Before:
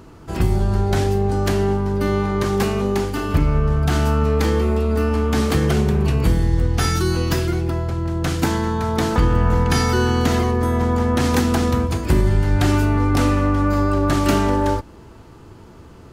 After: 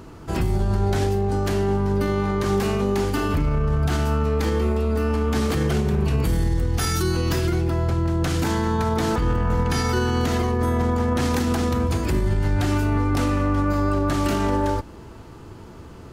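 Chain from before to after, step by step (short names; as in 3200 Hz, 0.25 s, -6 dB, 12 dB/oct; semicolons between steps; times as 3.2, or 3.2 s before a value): 6.25–7.03 high shelf 7500 Hz +8.5 dB; limiter -15 dBFS, peak gain reduction 11 dB; gain +1.5 dB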